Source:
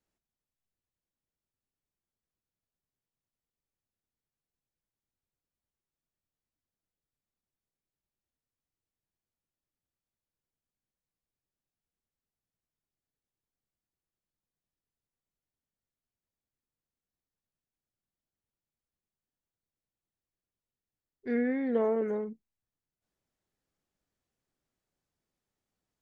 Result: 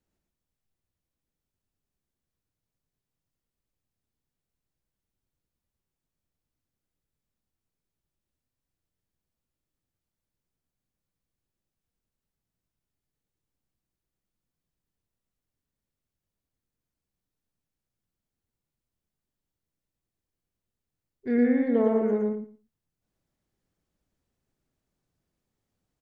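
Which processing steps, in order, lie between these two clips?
low shelf 380 Hz +8 dB; feedback echo 0.113 s, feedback 16%, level -3 dB

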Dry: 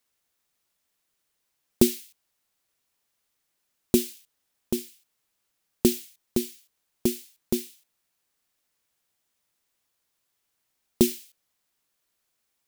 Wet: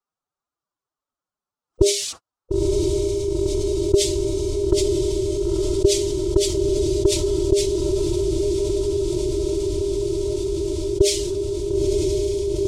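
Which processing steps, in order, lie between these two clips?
formant sharpening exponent 1.5; gate -53 dBFS, range -49 dB; LPF 8000 Hz 24 dB/oct; resonant high shelf 1600 Hz -8.5 dB, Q 3; formant-preserving pitch shift +9 st; on a send: diffused feedback echo 0.947 s, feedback 64%, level -13 dB; on the sum: fast leveller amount 70%; gain +3 dB

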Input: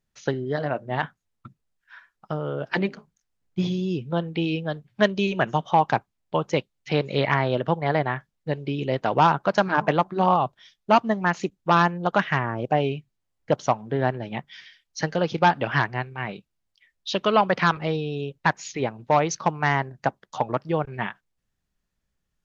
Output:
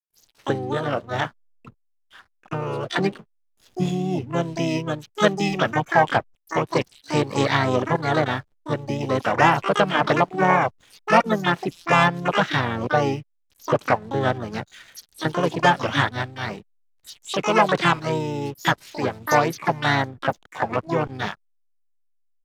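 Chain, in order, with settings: bands offset in time highs, lows 0.22 s, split 5200 Hz; backlash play -44.5 dBFS; harmoniser -4 st -6 dB, +12 st -5 dB

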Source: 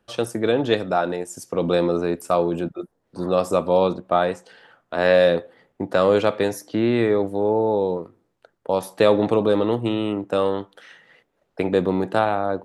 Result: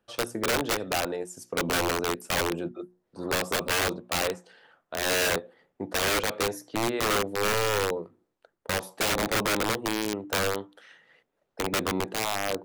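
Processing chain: low shelf 140 Hz -3 dB; notches 60/120/180/240/300/360 Hz; dynamic EQ 430 Hz, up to +3 dB, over -32 dBFS, Q 2.1; wrapped overs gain 13.5 dB; gain -6.5 dB

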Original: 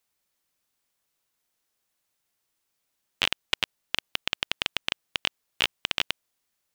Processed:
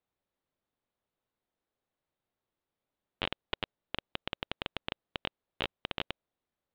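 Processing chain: EQ curve 550 Hz 0 dB, 2600 Hz -12 dB, 3800 Hz -11 dB, 5800 Hz -29 dB

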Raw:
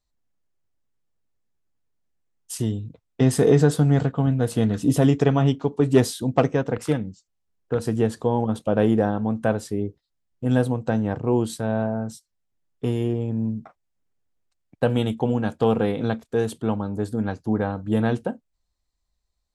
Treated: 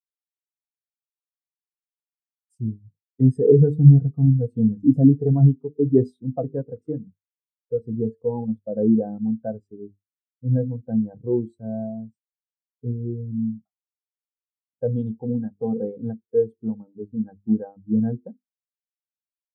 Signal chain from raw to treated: notches 50/100/150/200/250/300/350/400/450 Hz; in parallel at +3 dB: limiter -13 dBFS, peak gain reduction 8.5 dB; on the sum: spectral expander 2.5:1; gain -1 dB

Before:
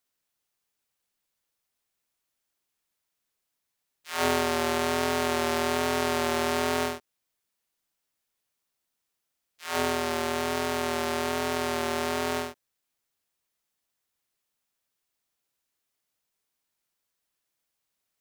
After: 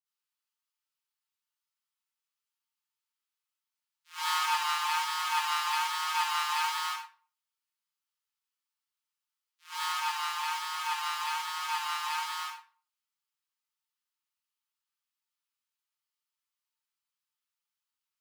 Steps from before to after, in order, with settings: rippled Chebyshev high-pass 870 Hz, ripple 3 dB; reverb RT60 0.45 s, pre-delay 47 ms, DRR -10.5 dB; upward expander 1.5:1, over -35 dBFS; gain -8 dB

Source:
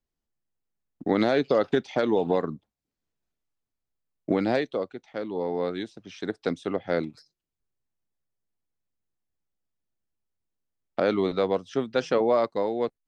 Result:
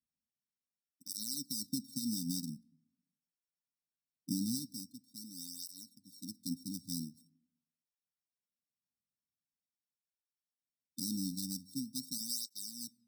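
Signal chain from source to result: sample sorter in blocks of 16 samples; brick-wall FIR band-stop 290–3600 Hz; low shelf 78 Hz -5.5 dB; on a send at -22.5 dB: reverb RT60 0.85 s, pre-delay 5 ms; on the sum: tape flanging out of phase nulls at 0.44 Hz, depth 1.9 ms; gain -4 dB

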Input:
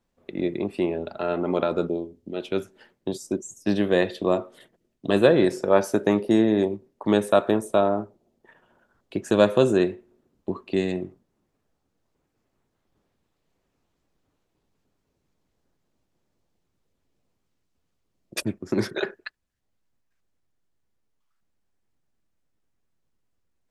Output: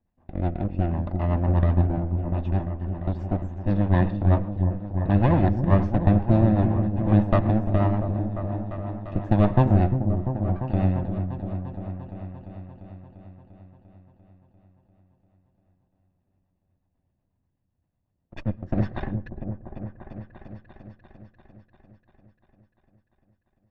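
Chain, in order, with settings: minimum comb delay 1.1 ms; bell 87 Hz +9 dB 0.33 oct; rotary speaker horn 8 Hz; tape spacing loss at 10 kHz 45 dB; repeats that get brighter 0.346 s, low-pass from 400 Hz, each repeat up 1 oct, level -6 dB; on a send at -20.5 dB: reverb RT60 0.30 s, pre-delay 0.101 s; on the sum: gain +3.5 dB

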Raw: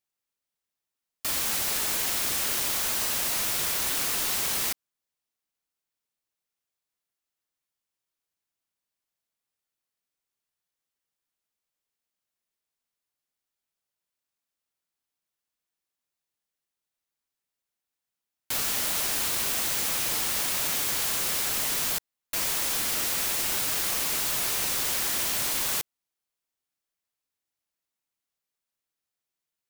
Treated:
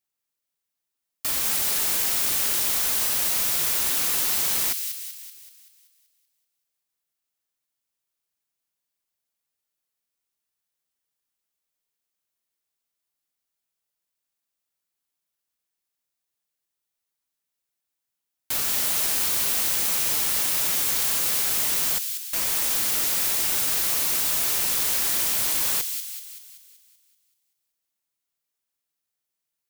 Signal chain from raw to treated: high shelf 9000 Hz +4.5 dB; on a send: thin delay 0.191 s, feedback 52%, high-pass 2900 Hz, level -5.5 dB

